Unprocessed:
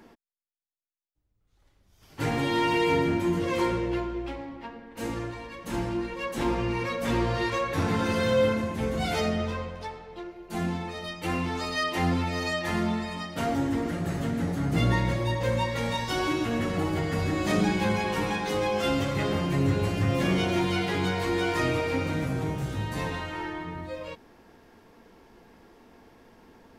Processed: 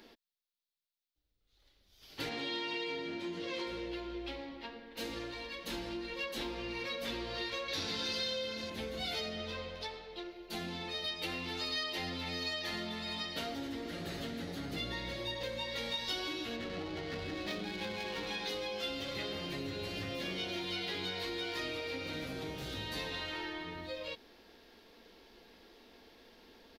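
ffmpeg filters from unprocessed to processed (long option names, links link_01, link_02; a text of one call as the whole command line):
ffmpeg -i in.wav -filter_complex "[0:a]asettb=1/sr,asplit=3[link_01][link_02][link_03];[link_01]atrim=end=2.294[link_04];[link_02]atrim=start=2.29:end=3.67,asetpts=PTS-STARTPTS,afade=type=in:duration=0.004:curve=qsin,afade=type=out:start_time=1.376:duration=0.004:curve=qsin,highpass=130,lowpass=7000[link_05];[link_03]atrim=start=3.666[link_06];[link_04][link_05]acrossfade=duration=0.004:curve1=hsin:curve2=qsin[link_07];[link_07][link_06]acrossfade=duration=0.004:curve1=qsin:curve2=hsin,asettb=1/sr,asplit=3[link_08][link_09][link_10];[link_08]atrim=end=7.684[link_11];[link_09]atrim=start=7.68:end=8.7,asetpts=PTS-STARTPTS,afade=type=in:duration=0.004:curve=qsin,afade=type=out:start_time=1.016:duration=0.004:curve=qsin,equalizer=frequency=5100:width_type=o:width=1.4:gain=10.5[link_12];[link_10]atrim=start=8.696[link_13];[link_11][link_12]acrossfade=duration=0.004:curve1=hsin:curve2=qsin[link_14];[link_14][link_13]acrossfade=duration=0.004:curve1=qsin:curve2=hsin,asplit=3[link_15][link_16][link_17];[link_15]afade=type=out:start_time=11.03:duration=0.02[link_18];[link_16]aecho=1:1:258:0.316,afade=type=in:start_time=11.03:duration=0.02,afade=type=out:start_time=13.67:duration=0.02[link_19];[link_17]afade=type=in:start_time=13.67:duration=0.02[link_20];[link_18][link_19][link_20]amix=inputs=3:normalize=0,asettb=1/sr,asplit=3[link_21][link_22][link_23];[link_21]atrim=end=16.564[link_24];[link_22]atrim=start=16.56:end=18.27,asetpts=PTS-STARTPTS,afade=type=in:duration=0.004:curve=qsin,afade=type=out:start_time=1.706:duration=0.004:curve=qsin,adynamicsmooth=sensitivity=7:basefreq=820[link_25];[link_23]atrim=start=18.266[link_26];[link_24][link_25]acrossfade=duration=0.004:curve1=hsin:curve2=qsin[link_27];[link_27][link_26]acrossfade=duration=0.004:curve1=qsin:curve2=hsin,equalizer=frequency=125:width_type=o:width=1:gain=-10,equalizer=frequency=500:width_type=o:width=1:gain=3,equalizer=frequency=1000:width_type=o:width=1:gain=-4,equalizer=frequency=4000:width_type=o:width=1:gain=11,equalizer=frequency=8000:width_type=o:width=1:gain=-10,acompressor=threshold=-32dB:ratio=6,highshelf=frequency=2500:gain=8,volume=-6dB" out.wav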